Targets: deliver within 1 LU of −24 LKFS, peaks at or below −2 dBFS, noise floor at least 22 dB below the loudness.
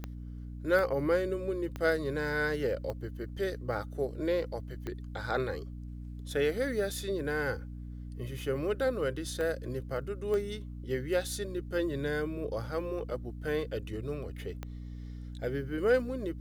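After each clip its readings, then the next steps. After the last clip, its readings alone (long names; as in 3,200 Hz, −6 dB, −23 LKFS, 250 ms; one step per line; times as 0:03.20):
number of clicks 8; mains hum 60 Hz; hum harmonics up to 300 Hz; level of the hum −39 dBFS; integrated loudness −33.0 LKFS; sample peak −14.5 dBFS; target loudness −24.0 LKFS
→ click removal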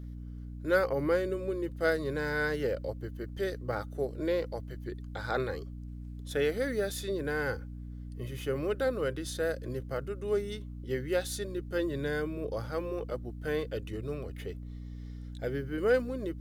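number of clicks 0; mains hum 60 Hz; hum harmonics up to 300 Hz; level of the hum −39 dBFS
→ hum removal 60 Hz, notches 5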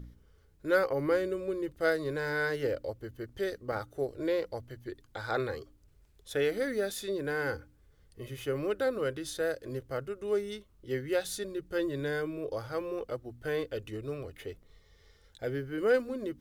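mains hum none found; integrated loudness −33.5 LKFS; sample peak −15.5 dBFS; target loudness −24.0 LKFS
→ level +9.5 dB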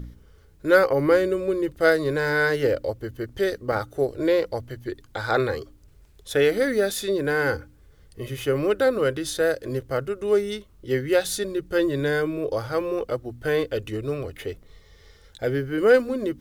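integrated loudness −24.0 LKFS; sample peak −6.0 dBFS; background noise floor −53 dBFS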